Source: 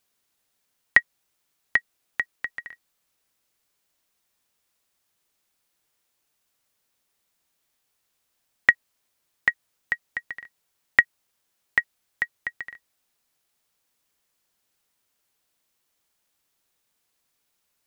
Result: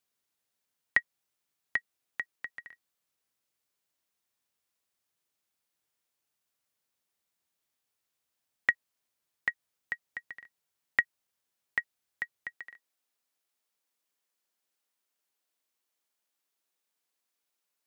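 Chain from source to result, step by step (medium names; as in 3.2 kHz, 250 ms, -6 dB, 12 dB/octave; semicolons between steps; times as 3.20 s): high-pass 58 Hz 12 dB/octave, from 12.54 s 240 Hz; trim -9 dB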